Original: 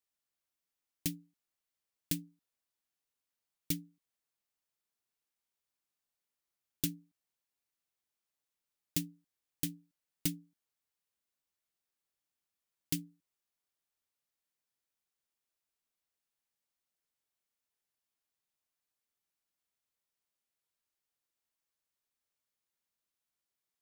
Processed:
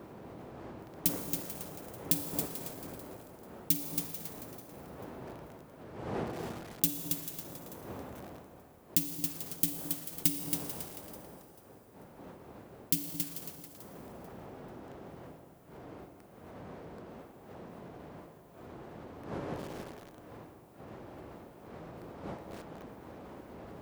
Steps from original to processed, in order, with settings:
wind on the microphone 550 Hz −50 dBFS
high-pass filter 72 Hz
high-shelf EQ 8,300 Hz +10.5 dB
in parallel at −3 dB: compressor whose output falls as the input rises −59 dBFS, ratio −1
on the sum: delay that swaps between a low-pass and a high-pass 220 ms, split 990 Hz, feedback 57%, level −10 dB
four-comb reverb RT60 2.6 s, DRR 7 dB
feedback echo at a low word length 275 ms, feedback 35%, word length 7 bits, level −5 dB

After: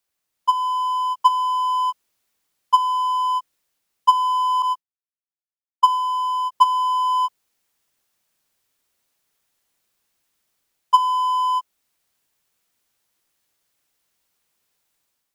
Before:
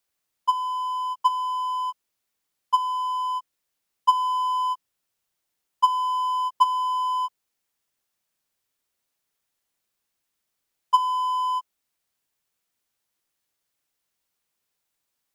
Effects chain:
0:04.62–0:06.52: downward expander −22 dBFS
automatic gain control gain up to 7 dB

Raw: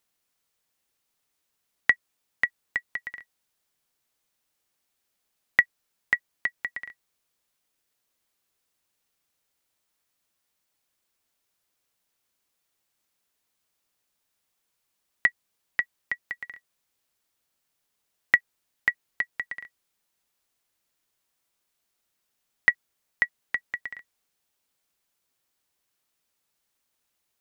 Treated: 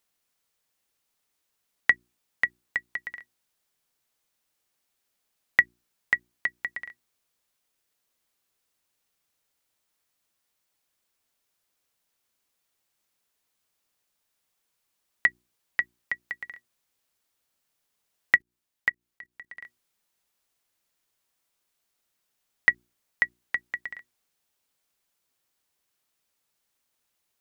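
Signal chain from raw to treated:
mains-hum notches 60/120/180/240/300/360 Hz
0:18.36–0:19.64: output level in coarse steps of 21 dB

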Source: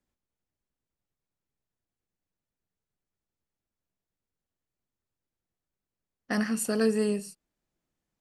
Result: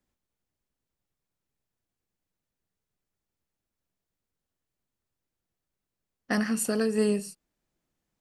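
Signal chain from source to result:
0:06.34–0:06.98: downward compressor, threshold −25 dBFS, peak gain reduction 6 dB
level +2.5 dB

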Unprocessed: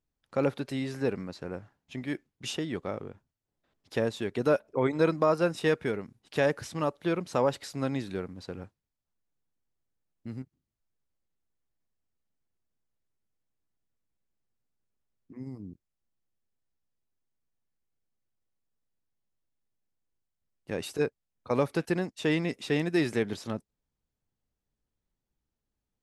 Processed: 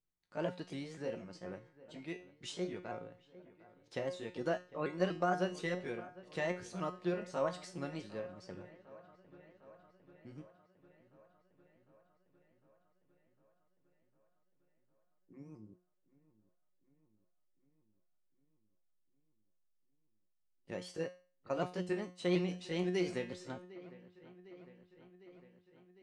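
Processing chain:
pitch shifter swept by a sawtooth +3.5 semitones, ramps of 243 ms
Butterworth low-pass 9,400 Hz 36 dB per octave
tuned comb filter 180 Hz, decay 0.38 s, harmonics all, mix 80%
delay with a low-pass on its return 754 ms, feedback 68%, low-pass 2,600 Hz, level −19 dB
level +1.5 dB

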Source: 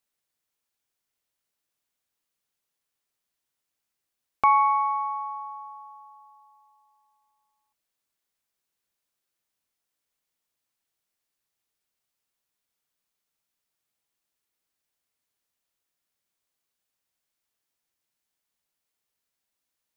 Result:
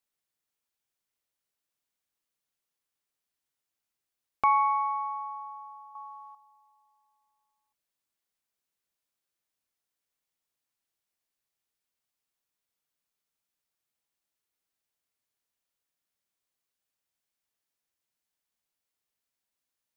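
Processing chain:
0:05.95–0:06.35: parametric band 1,500 Hz +11.5 dB 2.5 octaves
level −4 dB

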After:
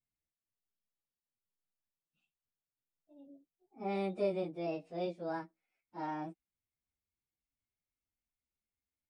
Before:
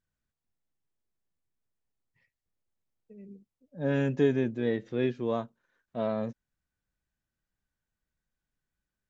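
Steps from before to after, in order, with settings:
phase-vocoder pitch shift without resampling +6 semitones
level −7.5 dB

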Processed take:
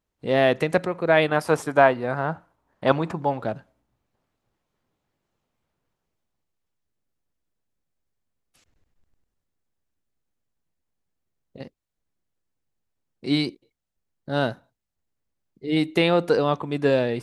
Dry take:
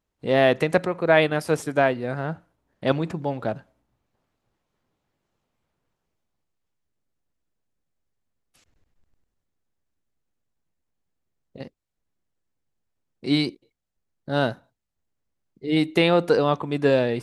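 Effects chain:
0:01.28–0:03.42: parametric band 1,000 Hz +9.5 dB 1.3 octaves
level −1 dB

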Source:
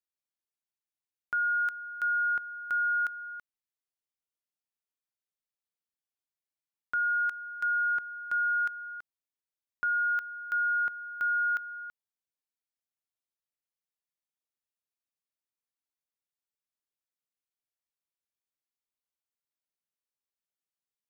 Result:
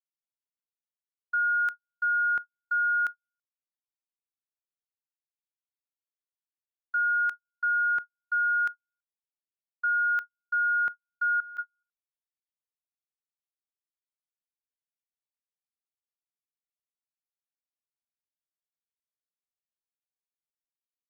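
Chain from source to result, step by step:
noise gate −32 dBFS, range −54 dB
0:11.40–0:11.83: compressor whose output falls as the input rises −42 dBFS, ratio −1
level +2.5 dB

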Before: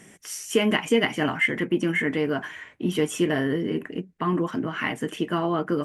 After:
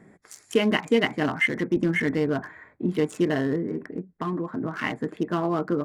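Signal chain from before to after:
adaptive Wiener filter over 15 samples
0:01.76–0:02.50: low-shelf EQ 91 Hz +12 dB
0:03.61–0:04.61: downward compressor 2.5 to 1, threshold −27 dBFS, peak gain reduction 5 dB

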